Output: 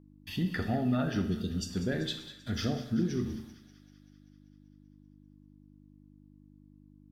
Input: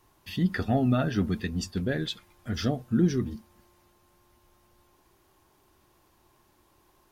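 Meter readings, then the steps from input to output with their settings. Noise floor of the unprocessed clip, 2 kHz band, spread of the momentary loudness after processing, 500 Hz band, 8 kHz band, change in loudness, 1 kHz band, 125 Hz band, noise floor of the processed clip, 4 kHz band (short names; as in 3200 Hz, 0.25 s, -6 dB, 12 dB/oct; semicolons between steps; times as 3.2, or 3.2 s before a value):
-65 dBFS, -3.5 dB, 10 LU, -5.0 dB, -2.5 dB, -4.5 dB, -5.0 dB, -5.0 dB, -58 dBFS, -1.5 dB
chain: spectral delete 1.24–1.7, 650–2700 Hz; gate -52 dBFS, range -27 dB; compressor, threshold -24 dBFS, peak gain reduction 7 dB; on a send: thin delay 0.194 s, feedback 66%, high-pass 1400 Hz, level -13.5 dB; on the sum: Schroeder reverb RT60 0.72 s, combs from 28 ms, DRR 7 dB; buzz 50 Hz, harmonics 6, -55 dBFS 0 dB/oct; gain -2.5 dB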